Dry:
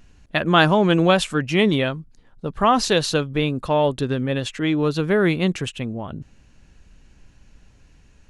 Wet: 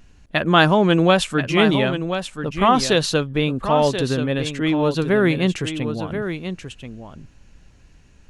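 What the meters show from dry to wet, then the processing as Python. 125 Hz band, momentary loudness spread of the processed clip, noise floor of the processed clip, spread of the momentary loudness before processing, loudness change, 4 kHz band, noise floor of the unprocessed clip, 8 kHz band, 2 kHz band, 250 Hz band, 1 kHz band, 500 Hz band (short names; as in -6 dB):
+1.5 dB, 12 LU, -51 dBFS, 13 LU, +1.0 dB, +1.5 dB, -54 dBFS, +1.5 dB, +1.5 dB, +1.5 dB, +1.5 dB, +1.5 dB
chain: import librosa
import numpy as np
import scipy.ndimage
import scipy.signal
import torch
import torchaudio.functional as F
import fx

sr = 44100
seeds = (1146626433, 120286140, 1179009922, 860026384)

y = x + 10.0 ** (-9.0 / 20.0) * np.pad(x, (int(1032 * sr / 1000.0), 0))[:len(x)]
y = y * librosa.db_to_amplitude(1.0)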